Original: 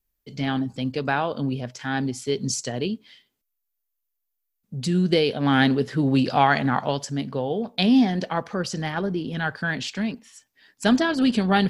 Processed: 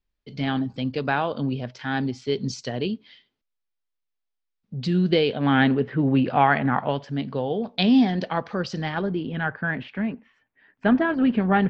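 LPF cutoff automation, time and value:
LPF 24 dB/oct
4.95 s 4700 Hz
5.86 s 2700 Hz
6.83 s 2700 Hz
7.41 s 4800 Hz
8.94 s 4800 Hz
9.57 s 2300 Hz

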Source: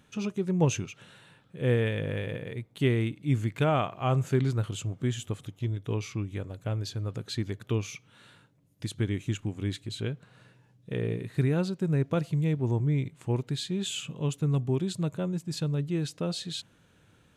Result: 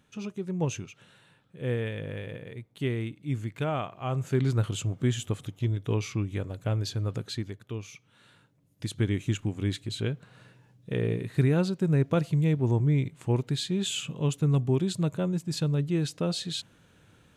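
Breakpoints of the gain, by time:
4.12 s -4.5 dB
4.57 s +3 dB
7.17 s +3 dB
7.67 s -8 dB
9.07 s +2.5 dB

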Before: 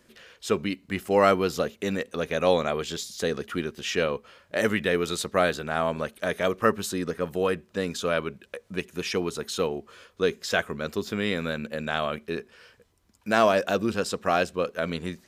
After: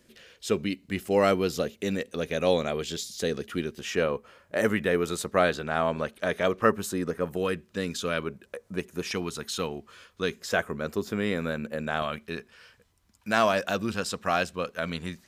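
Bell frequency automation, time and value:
bell -6.5 dB 1.4 oct
1100 Hz
from 3.79 s 3800 Hz
from 5.34 s 13000 Hz
from 6.7 s 3800 Hz
from 7.37 s 720 Hz
from 8.23 s 3100 Hz
from 9.11 s 480 Hz
from 10.4 s 3600 Hz
from 12.02 s 410 Hz

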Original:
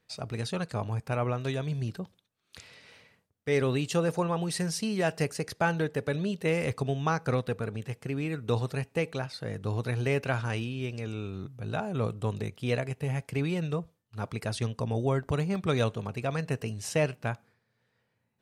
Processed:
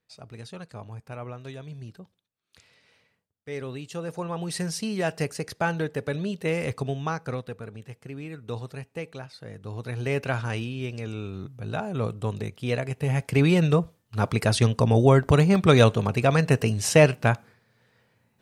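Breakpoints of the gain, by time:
3.91 s -8 dB
4.56 s +1 dB
6.86 s +1 dB
7.53 s -5.5 dB
9.68 s -5.5 dB
10.19 s +2 dB
12.77 s +2 dB
13.48 s +10.5 dB

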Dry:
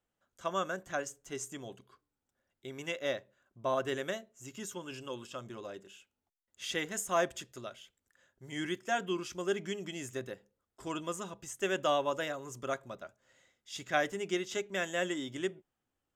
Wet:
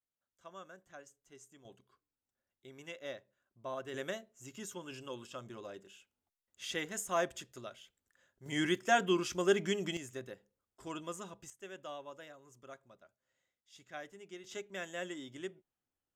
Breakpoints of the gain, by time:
-17 dB
from 1.65 s -9.5 dB
from 3.94 s -3 dB
from 8.46 s +4 dB
from 9.97 s -5 dB
from 11.5 s -16 dB
from 14.44 s -8 dB

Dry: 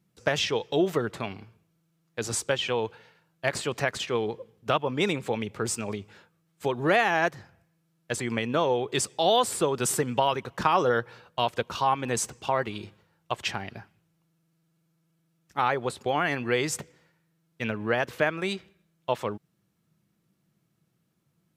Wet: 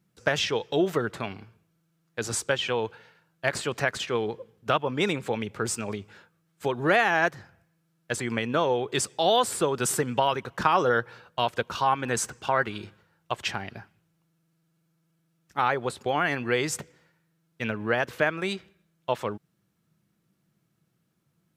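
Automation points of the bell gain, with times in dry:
bell 1500 Hz 0.45 oct
11.71 s +4 dB
12.28 s +10.5 dB
12.78 s +10.5 dB
13.32 s +2.5 dB

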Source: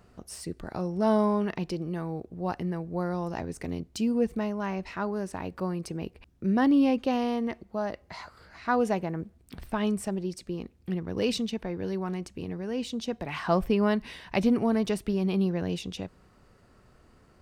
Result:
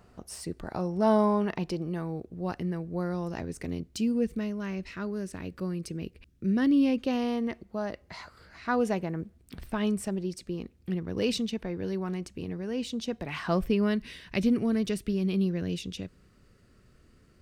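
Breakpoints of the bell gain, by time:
bell 840 Hz 0.96 oct
1.77 s +2 dB
2.26 s -6 dB
3.81 s -6 dB
4.42 s -15 dB
6.67 s -15 dB
7.29 s -4.5 dB
13.37 s -4.5 dB
14 s -14 dB

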